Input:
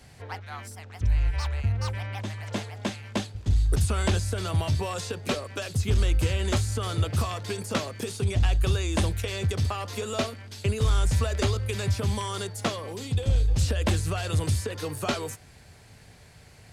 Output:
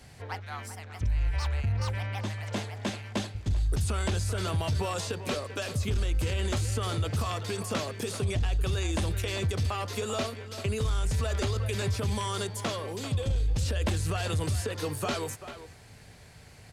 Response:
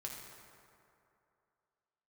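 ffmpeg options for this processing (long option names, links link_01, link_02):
-filter_complex "[0:a]asplit=2[link_01][link_02];[link_02]adelay=390,highpass=300,lowpass=3400,asoftclip=type=hard:threshold=-23.5dB,volume=-12dB[link_03];[link_01][link_03]amix=inputs=2:normalize=0,alimiter=limit=-21.5dB:level=0:latency=1:release=24"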